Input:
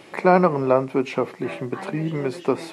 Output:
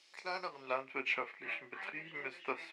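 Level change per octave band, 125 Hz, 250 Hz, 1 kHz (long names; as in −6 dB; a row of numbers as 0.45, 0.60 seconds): −36.0, −28.0, −18.5 decibels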